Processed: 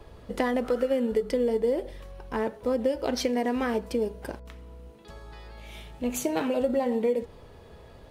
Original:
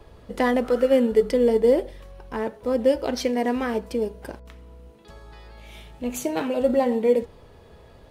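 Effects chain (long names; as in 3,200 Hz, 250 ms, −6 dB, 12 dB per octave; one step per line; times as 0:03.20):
downward compressor 6 to 1, threshold −22 dBFS, peak gain reduction 9.5 dB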